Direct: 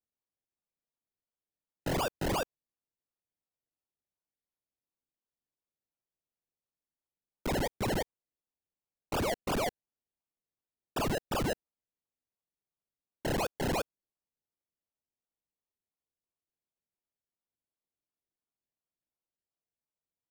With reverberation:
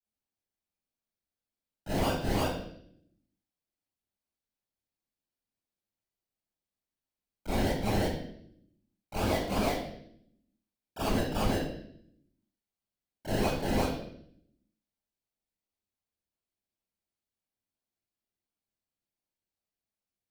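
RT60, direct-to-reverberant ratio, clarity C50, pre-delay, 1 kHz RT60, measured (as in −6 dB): 0.70 s, −13.0 dB, −0.5 dB, 26 ms, 0.55 s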